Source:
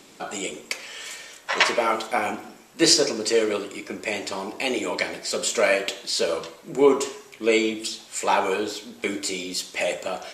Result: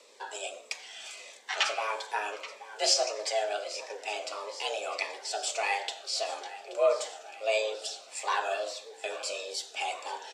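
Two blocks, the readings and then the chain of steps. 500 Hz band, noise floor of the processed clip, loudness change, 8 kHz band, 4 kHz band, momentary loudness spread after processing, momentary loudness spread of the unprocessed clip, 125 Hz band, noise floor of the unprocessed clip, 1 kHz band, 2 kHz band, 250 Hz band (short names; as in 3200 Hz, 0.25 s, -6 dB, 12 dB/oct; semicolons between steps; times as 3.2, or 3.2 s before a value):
-8.5 dB, -52 dBFS, -8.0 dB, -7.5 dB, -6.5 dB, 12 LU, 13 LU, under -40 dB, -49 dBFS, -5.5 dB, -8.0 dB, -27.0 dB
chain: soft clip -4 dBFS, distortion -28 dB; feedback echo 0.828 s, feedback 59%, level -16 dB; frequency shift +210 Hz; LPF 7600 Hz 12 dB/oct; bell 170 Hz -2.5 dB 0.98 oct; cascading phaser falling 1.6 Hz; gain -5.5 dB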